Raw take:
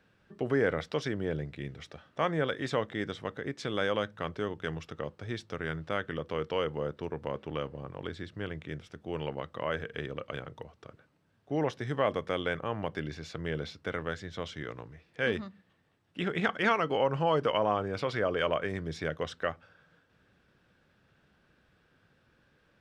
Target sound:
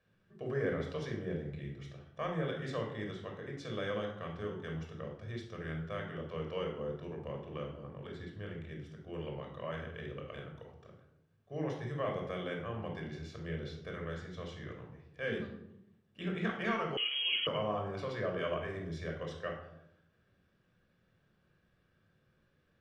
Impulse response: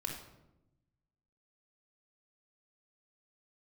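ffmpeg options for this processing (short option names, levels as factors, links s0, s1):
-filter_complex "[1:a]atrim=start_sample=2205,asetrate=52920,aresample=44100[s0];[0:a][s0]afir=irnorm=-1:irlink=0,asettb=1/sr,asplit=3[s1][s2][s3];[s1]atrim=end=16.974[s4];[s2]atrim=start=16.97:end=17.47,asetpts=PTS-STARTPTS,afade=t=in:d=0.004:c=qsin,afade=t=out:st=0.496:d=0.004:c=qsin,lowpass=f=2900:t=q:w=0.5098,lowpass=f=2900:t=q:w=0.6013,lowpass=f=2900:t=q:w=0.9,lowpass=f=2900:t=q:w=2.563,afreqshift=-3400[s5];[s3]atrim=start=17.466[s6];[s4][s5]acrossfade=d=0.004:c1=hsin:c2=qsin[s7];[s7][s6]acrossfade=d=0.004:c1=qsin:c2=hsin,volume=0.447"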